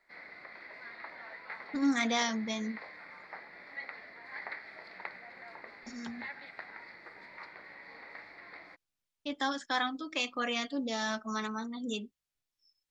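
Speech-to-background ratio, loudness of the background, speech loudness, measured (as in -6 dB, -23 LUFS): 12.5 dB, -46.5 LUFS, -34.0 LUFS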